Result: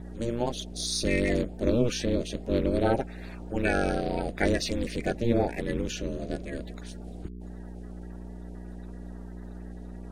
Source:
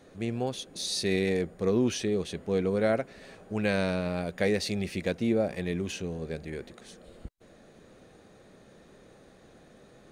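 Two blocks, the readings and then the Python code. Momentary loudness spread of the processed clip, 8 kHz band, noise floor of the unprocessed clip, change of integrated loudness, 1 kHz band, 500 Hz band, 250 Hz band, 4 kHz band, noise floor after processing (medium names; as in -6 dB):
17 LU, +2.0 dB, -56 dBFS, +1.0 dB, +5.0 dB, 0.0 dB, +1.5 dB, +0.5 dB, -41 dBFS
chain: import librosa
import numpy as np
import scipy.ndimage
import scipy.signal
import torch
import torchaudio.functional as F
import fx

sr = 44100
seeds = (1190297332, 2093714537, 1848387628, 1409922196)

y = fx.spec_quant(x, sr, step_db=30)
y = fx.add_hum(y, sr, base_hz=60, snr_db=11)
y = y * np.sin(2.0 * np.pi * 120.0 * np.arange(len(y)) / sr)
y = y * librosa.db_to_amplitude(5.0)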